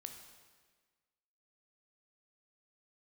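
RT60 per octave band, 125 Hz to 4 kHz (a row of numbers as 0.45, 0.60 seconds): 1.5, 1.5, 1.5, 1.5, 1.5, 1.3 seconds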